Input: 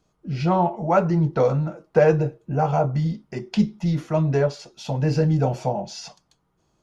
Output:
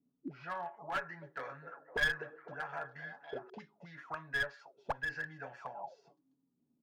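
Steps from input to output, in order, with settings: comb 7.2 ms, depth 50%; auto-wah 240–1700 Hz, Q 16, up, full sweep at -18.5 dBFS; one-sided clip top -41 dBFS; 0.96–3.50 s: repeats whose band climbs or falls 253 ms, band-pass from 390 Hz, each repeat 0.7 oct, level -6.5 dB; trim +7.5 dB

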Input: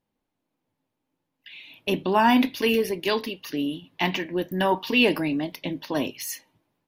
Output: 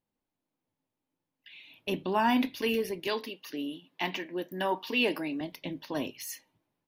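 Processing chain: 3.07–5.41 s: high-pass 230 Hz 12 dB/octave; trim -7 dB

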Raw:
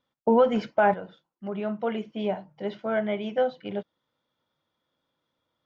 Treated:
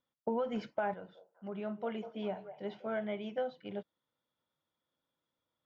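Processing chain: compression, threshold -21 dBFS, peak gain reduction 6.5 dB; 0.95–3.05 s: repeats whose band climbs or falls 197 ms, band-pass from 620 Hz, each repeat 0.7 oct, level -9 dB; trim -9 dB

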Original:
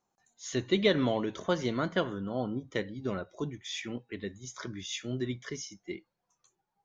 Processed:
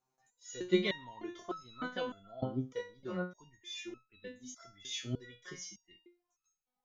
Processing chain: resonator arpeggio 3.3 Hz 130–1300 Hz; trim +7.5 dB

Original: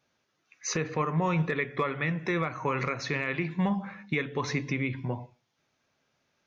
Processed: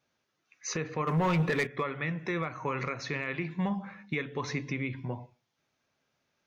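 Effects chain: 1.07–1.67 s: waveshaping leveller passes 2; trim -3.5 dB

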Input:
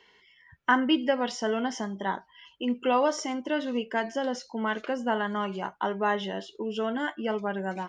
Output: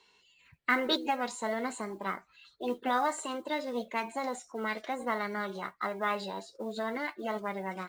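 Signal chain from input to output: formant shift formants +5 st; modulation noise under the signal 30 dB; trim -5 dB

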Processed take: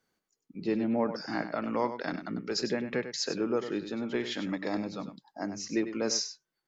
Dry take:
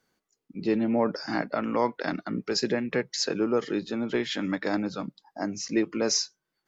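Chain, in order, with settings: 4.40–5.04 s: band-stop 1.5 kHz, Q 5; on a send: delay 98 ms -10.5 dB; on the sum: trim -4.5 dB

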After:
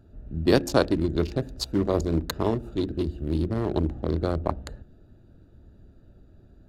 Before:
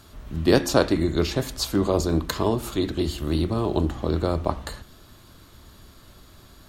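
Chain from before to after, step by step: local Wiener filter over 41 samples; trim -1.5 dB

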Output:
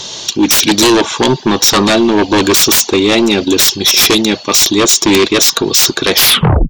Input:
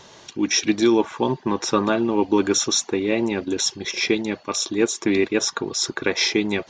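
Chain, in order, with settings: tape stop on the ending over 0.56 s; resonant high shelf 2.6 kHz +9.5 dB, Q 1.5; sine folder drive 19 dB, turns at 4 dBFS; trim -8.5 dB

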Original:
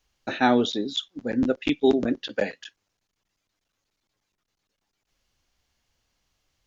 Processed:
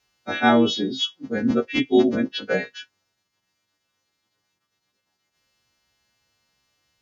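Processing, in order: partials quantised in pitch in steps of 2 st; high-pass 120 Hz 12 dB/octave; wide varispeed 0.95×; low-pass 3 kHz 6 dB/octave; bass shelf 160 Hz +7.5 dB; trim +2.5 dB

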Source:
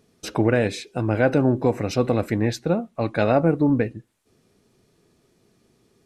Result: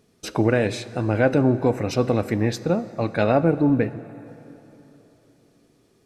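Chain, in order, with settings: plate-style reverb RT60 3.5 s, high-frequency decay 0.75×, DRR 14.5 dB

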